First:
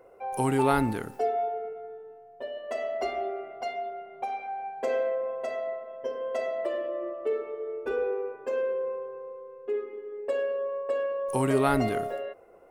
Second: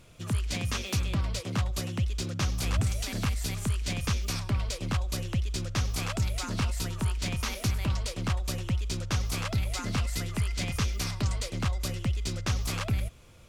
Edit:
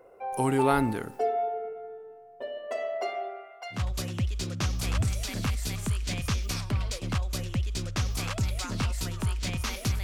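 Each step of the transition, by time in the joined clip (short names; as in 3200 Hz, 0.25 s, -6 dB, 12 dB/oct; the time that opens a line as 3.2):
first
2.68–3.84 HPF 260 Hz -> 1500 Hz
3.77 switch to second from 1.56 s, crossfade 0.14 s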